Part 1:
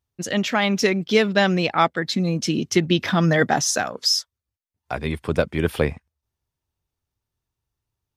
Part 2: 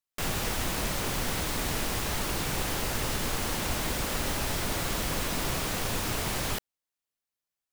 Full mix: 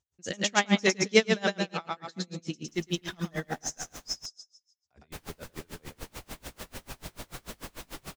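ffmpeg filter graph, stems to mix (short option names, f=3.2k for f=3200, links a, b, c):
-filter_complex "[0:a]lowpass=f=6.9k:t=q:w=3.8,volume=-0.5dB,afade=t=out:st=1.33:d=0.26:silence=0.316228,afade=t=out:st=3.15:d=0.5:silence=0.421697,asplit=3[a][b][c];[b]volume=-4dB[d];[1:a]flanger=delay=17.5:depth=5.8:speed=3,adelay=2500,volume=-4dB,asplit=3[e][f][g];[e]atrim=end=4.26,asetpts=PTS-STARTPTS,afade=t=out:st=4.256:d=0.004:c=hsin[h];[f]atrim=start=4.26:end=5.12,asetpts=PTS-STARTPTS,volume=0[i];[g]atrim=start=5.12,asetpts=PTS-STARTPTS,afade=t=in:d=0.004:c=hsin[j];[h][i][j]concat=n=3:v=0:a=1[k];[c]apad=whole_len=450765[l];[k][l]sidechaincompress=threshold=-36dB:ratio=4:attack=25:release=747[m];[d]aecho=0:1:109|218|327|436|545|654:1|0.45|0.202|0.0911|0.041|0.0185[n];[a][m][n]amix=inputs=3:normalize=0,aeval=exprs='val(0)*pow(10,-32*(0.5-0.5*cos(2*PI*6.8*n/s))/20)':c=same"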